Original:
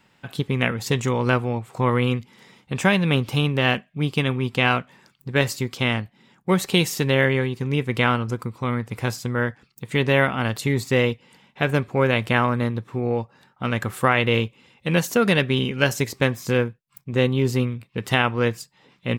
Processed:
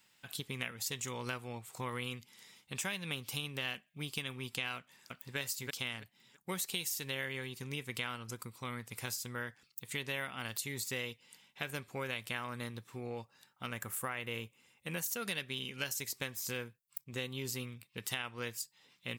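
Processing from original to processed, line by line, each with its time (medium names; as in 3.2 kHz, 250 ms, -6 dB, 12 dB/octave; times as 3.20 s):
4.77–5.37 s: echo throw 330 ms, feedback 20%, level -2 dB
13.67–15.06 s: peaking EQ 4 kHz -9.5 dB 1.2 oct
whole clip: pre-emphasis filter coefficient 0.9; compression 3:1, threshold -38 dBFS; trim +1.5 dB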